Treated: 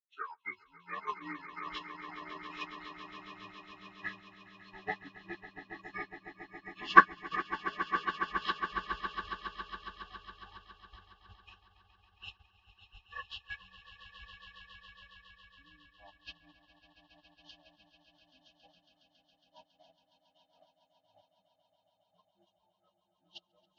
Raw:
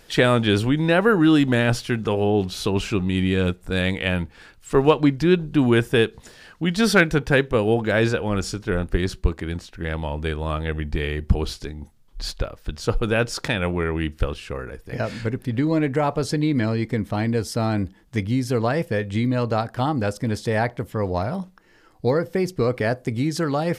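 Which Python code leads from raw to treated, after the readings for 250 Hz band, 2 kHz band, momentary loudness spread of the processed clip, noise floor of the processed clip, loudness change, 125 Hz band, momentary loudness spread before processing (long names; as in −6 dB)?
−28.5 dB, −10.0 dB, 18 LU, −79 dBFS, −12.0 dB, −36.0 dB, 11 LU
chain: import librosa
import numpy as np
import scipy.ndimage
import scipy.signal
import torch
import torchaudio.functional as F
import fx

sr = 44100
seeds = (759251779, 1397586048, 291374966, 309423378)

p1 = fx.partial_stretch(x, sr, pct=83)
p2 = fx.noise_reduce_blind(p1, sr, reduce_db=29)
p3 = fx.low_shelf(p2, sr, hz=65.0, db=-6.0)
p4 = fx.level_steps(p3, sr, step_db=17)
p5 = p3 + F.gain(torch.from_numpy(p4), 0.5).numpy()
p6 = fx.graphic_eq_10(p5, sr, hz=(125, 250, 500, 1000, 2000, 4000, 8000), db=(-11, -11, -10, 5, 9, 6, -5))
p7 = p6 + fx.echo_swell(p6, sr, ms=138, loudest=8, wet_db=-7.5, dry=0)
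p8 = fx.upward_expand(p7, sr, threshold_db=-33.0, expansion=2.5)
y = F.gain(torch.from_numpy(p8), -5.0).numpy()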